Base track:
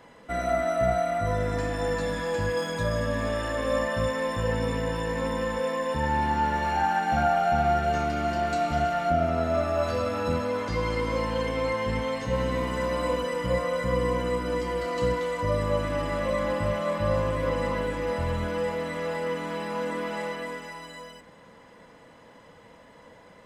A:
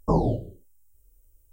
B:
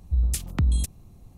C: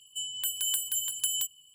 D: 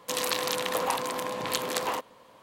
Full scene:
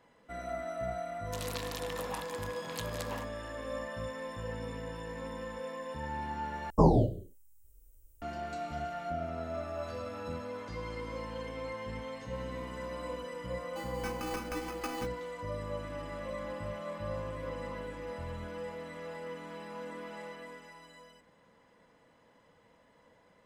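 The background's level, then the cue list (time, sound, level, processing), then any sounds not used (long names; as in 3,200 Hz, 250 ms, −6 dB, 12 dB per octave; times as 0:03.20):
base track −12.5 dB
0:01.24: mix in D −12 dB
0:06.70: overwrite with A −0.5 dB
0:13.60: mix in C −9 dB + sample-rate reduction 3,800 Hz
not used: B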